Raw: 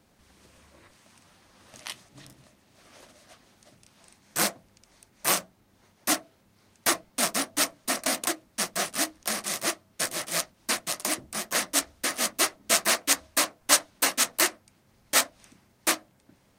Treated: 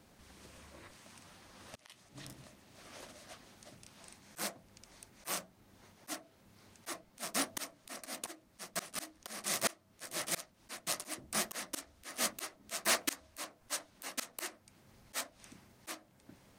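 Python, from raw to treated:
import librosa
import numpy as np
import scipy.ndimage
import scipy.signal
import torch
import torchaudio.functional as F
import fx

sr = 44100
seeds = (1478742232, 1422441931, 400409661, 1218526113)

y = fx.auto_swell(x, sr, attack_ms=426.0)
y = 10.0 ** (-20.5 / 20.0) * np.tanh(y / 10.0 ** (-20.5 / 20.0))
y = y * librosa.db_to_amplitude(1.0)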